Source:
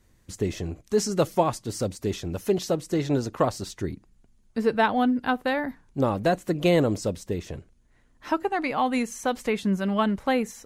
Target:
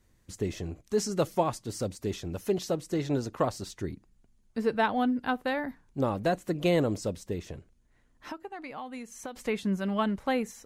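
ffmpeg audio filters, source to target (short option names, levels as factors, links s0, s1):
-filter_complex "[0:a]asettb=1/sr,asplit=3[s0][s1][s2];[s0]atrim=end=7.524[s3];[s1]atrim=start=7.52:end=9.36,asetpts=PTS-STARTPTS,afade=t=in:d=0.004:c=qsin,afade=t=out:st=1.836:d=0.004:c=qsin,acompressor=threshold=0.0224:ratio=6[s4];[s2]atrim=start=9.356[s5];[s3][s4]acrossfade=d=0.004:c1=hsin:c2=qsin[s6];[s6][s5]acrossfade=d=0.004:c1=qsin:c2=hsin,volume=0.596"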